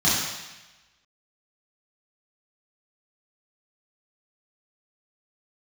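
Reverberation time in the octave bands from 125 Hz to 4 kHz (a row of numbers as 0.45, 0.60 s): 1.1, 1.0, 1.0, 1.1, 1.2, 1.1 s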